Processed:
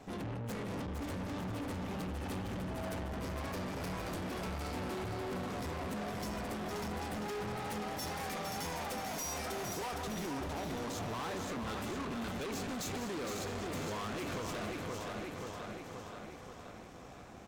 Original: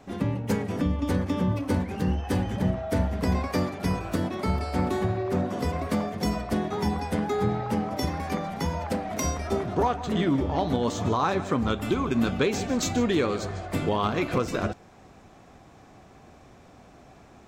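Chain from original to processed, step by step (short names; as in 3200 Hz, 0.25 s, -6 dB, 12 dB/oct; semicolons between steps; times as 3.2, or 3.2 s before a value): 7.56–9.94 tilt +2 dB/oct; feedback echo 0.528 s, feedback 56%, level -11 dB; compressor, threshold -24 dBFS, peak gain reduction 5.5 dB; high shelf 8100 Hz +4.5 dB; tube stage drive 39 dB, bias 0.7; thinning echo 0.46 s, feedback 49%, level -6 dB; gain +1 dB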